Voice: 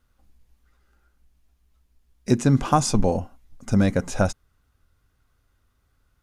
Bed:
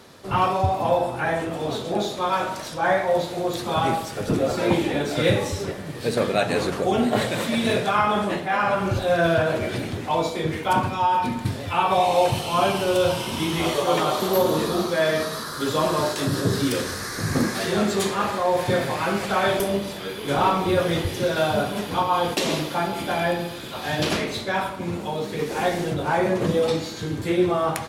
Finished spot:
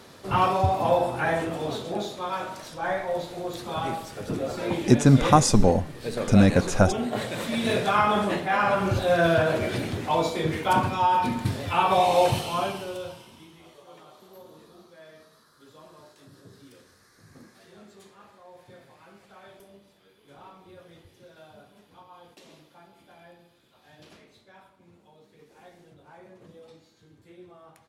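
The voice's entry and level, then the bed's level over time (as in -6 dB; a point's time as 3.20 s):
2.60 s, +2.0 dB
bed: 1.41 s -1 dB
2.20 s -7.5 dB
7.21 s -7.5 dB
7.91 s -1 dB
12.34 s -1 dB
13.61 s -28.5 dB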